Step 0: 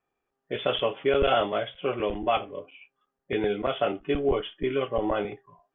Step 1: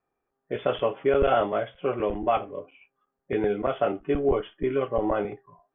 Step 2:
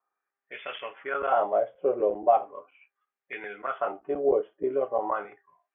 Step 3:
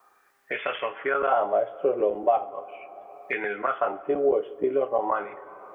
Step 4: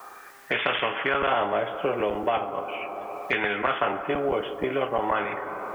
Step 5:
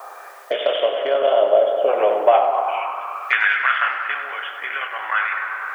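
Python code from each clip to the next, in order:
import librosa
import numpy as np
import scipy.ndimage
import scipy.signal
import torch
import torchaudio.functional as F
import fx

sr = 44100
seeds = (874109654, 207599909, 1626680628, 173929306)

y1 = scipy.signal.sosfilt(scipy.signal.butter(2, 1800.0, 'lowpass', fs=sr, output='sos'), x)
y1 = y1 * librosa.db_to_amplitude(1.5)
y2 = fx.wah_lfo(y1, sr, hz=0.39, low_hz=490.0, high_hz=2300.0, q=2.6)
y2 = y2 * librosa.db_to_amplitude(4.5)
y3 = fx.rev_plate(y2, sr, seeds[0], rt60_s=2.0, hf_ratio=0.8, predelay_ms=0, drr_db=18.0)
y3 = fx.band_squash(y3, sr, depth_pct=70)
y3 = y3 * librosa.db_to_amplitude(2.0)
y4 = fx.spectral_comp(y3, sr, ratio=2.0)
y5 = fx.spec_box(y4, sr, start_s=0.45, length_s=1.44, low_hz=700.0, high_hz=2800.0, gain_db=-11)
y5 = fx.echo_tape(y5, sr, ms=97, feedback_pct=88, wet_db=-8, lp_hz=3100.0, drive_db=14.0, wow_cents=29)
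y5 = fx.filter_sweep_highpass(y5, sr, from_hz=590.0, to_hz=1600.0, start_s=2.26, end_s=3.54, q=3.3)
y5 = y5 * librosa.db_to_amplitude(3.0)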